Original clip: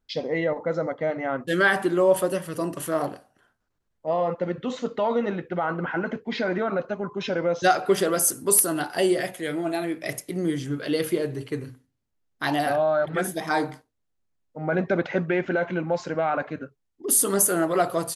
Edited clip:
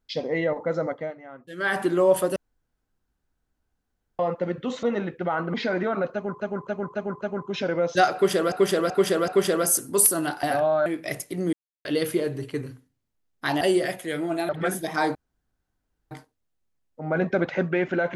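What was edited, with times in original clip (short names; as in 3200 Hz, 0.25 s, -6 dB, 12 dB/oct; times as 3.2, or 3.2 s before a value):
0.91–1.81 dip -15.5 dB, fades 0.25 s
2.36–4.19 room tone
4.83–5.14 cut
5.85–6.29 cut
6.88–7.15 loop, 5 plays
7.81–8.19 loop, 4 plays
8.96–9.84 swap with 12.59–13.02
10.51–10.83 mute
13.68 insert room tone 0.96 s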